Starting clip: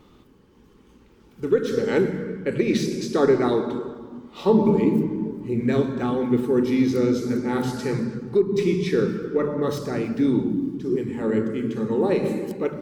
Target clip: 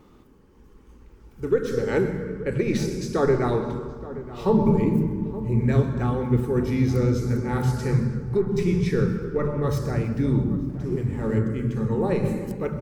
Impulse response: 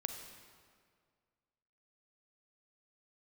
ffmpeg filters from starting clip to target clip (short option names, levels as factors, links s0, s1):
-filter_complex "[0:a]asplit=2[s0][s1];[1:a]atrim=start_sample=2205,adelay=131[s2];[s1][s2]afir=irnorm=-1:irlink=0,volume=0.141[s3];[s0][s3]amix=inputs=2:normalize=0,asubboost=boost=12:cutoff=82,asettb=1/sr,asplit=3[s4][s5][s6];[s4]atrim=end=10.694[s7];[s5]atrim=start=10.69:end=11.39,asetpts=PTS-STARTPTS,afade=t=in:d=0.004:c=qsin,afade=t=out:st=0.696:d=0.004:c=qsin,aeval=exprs='sgn(val(0))*max(abs(val(0))-0.00473,0)':c=same[s8];[s6]atrim=start=11.386[s9];[s7][s8]acrossfade=d=0.004:c1=hsin:c2=qsin[s10];[s10][s9]acrossfade=d=0.004:c1=qsin:c2=hsin,equalizer=f=3500:t=o:w=0.95:g=-7,asplit=2[s11][s12];[s12]adelay=874.6,volume=0.178,highshelf=f=4000:g=-19.7[s13];[s11][s13]amix=inputs=2:normalize=0"